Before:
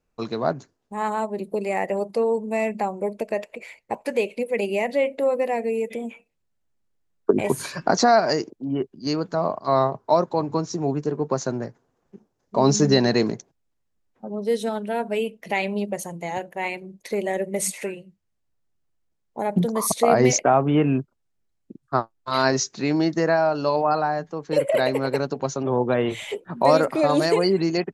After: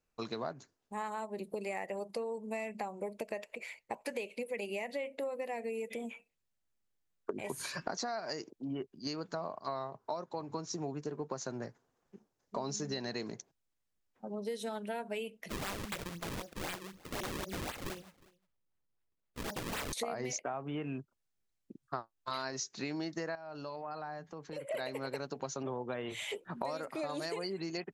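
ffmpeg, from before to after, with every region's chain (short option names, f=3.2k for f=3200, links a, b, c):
-filter_complex "[0:a]asettb=1/sr,asplit=3[a][b][c];[a]atrim=end=15.494[d];[b]atrim=start=15.49:end=19.93,asetpts=PTS-STARTPTS,afade=t=in:d=0.004:c=qsin,afade=t=out:st=4.436:d=0.004:c=qsin,acrusher=samples=35:mix=1:aa=0.000001:lfo=1:lforange=56:lforate=3.9,aeval=exprs='(mod(15.8*val(0)+1,2)-1)/15.8':c=same,aecho=1:1:360:0.0631,atrim=end_sample=195804[e];[c]atrim=start=19.926[f];[d][e]acrossfade=d=0.004:c1=hsin:c2=qsin[g];[g][f]acrossfade=d=0.004:c1=qsin:c2=hsin,asettb=1/sr,asplit=3[h][i][j];[h]atrim=end=23.354[k];[i]atrim=start=23.35:end=24.71,asetpts=PTS-STARTPTS,afade=t=in:d=0.004:c=qsin,afade=t=out:st=1.356:d=0.004:c=qsin,highpass=45,bass=f=250:g=4,treble=f=4k:g=-3,acompressor=threshold=-35dB:ratio=3:attack=3.2:release=140:knee=1:detection=peak[l];[j]atrim=start=24.706[m];[k][l]acrossfade=d=0.004:c1=hsin:c2=qsin[n];[n][m]acrossfade=d=0.004:c1=qsin:c2=hsin,tiltshelf=f=970:g=-3.5,acompressor=threshold=-28dB:ratio=10,volume=-6.5dB"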